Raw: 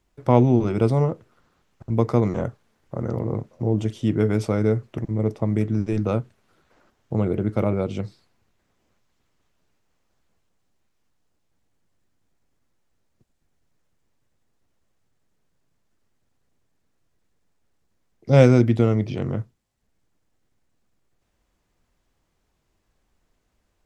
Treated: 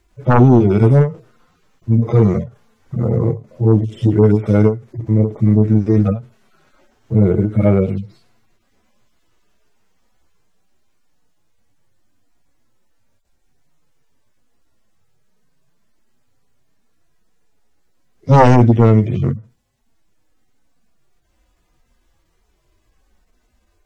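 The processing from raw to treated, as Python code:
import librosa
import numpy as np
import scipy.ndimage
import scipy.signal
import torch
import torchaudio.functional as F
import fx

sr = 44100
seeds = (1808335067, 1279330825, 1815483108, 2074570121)

y = fx.hpss_only(x, sr, part='harmonic')
y = fx.fold_sine(y, sr, drive_db=9, ceiling_db=-2.5)
y = fx.end_taper(y, sr, db_per_s=190.0)
y = F.gain(torch.from_numpy(y), -1.0).numpy()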